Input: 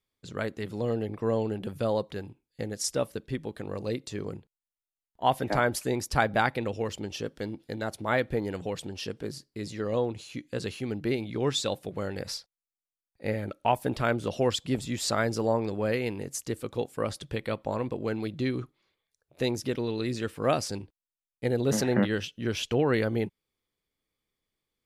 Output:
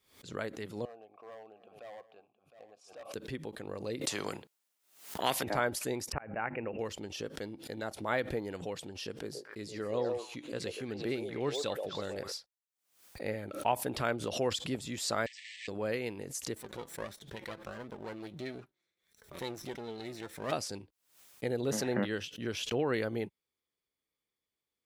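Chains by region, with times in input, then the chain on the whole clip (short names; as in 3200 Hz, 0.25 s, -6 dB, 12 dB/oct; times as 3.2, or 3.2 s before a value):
0.85–3.14 vowel filter a + hard clip -38.5 dBFS + echo 0.711 s -17 dB
4.01–5.43 HPF 150 Hz + spectral compressor 2:1
6.12–6.79 Chebyshev low-pass 2800 Hz, order 8 + notches 50/100/150/200/250/300/350 Hz + auto swell 0.423 s
9.12–12.32 de-esser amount 75% + delay with a stepping band-pass 0.124 s, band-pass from 550 Hz, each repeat 1.4 oct, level -1.5 dB
15.26–15.68 block floating point 3-bit + brick-wall FIR band-pass 1700–8400 Hz + bell 6400 Hz -14 dB 1.1 oct
16.55–20.52 minimum comb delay 0.53 ms + flange 1.5 Hz, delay 4.5 ms, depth 1.6 ms, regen +56%
whole clip: HPF 45 Hz; tone controls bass -5 dB, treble +1 dB; backwards sustainer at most 110 dB/s; gain -5.5 dB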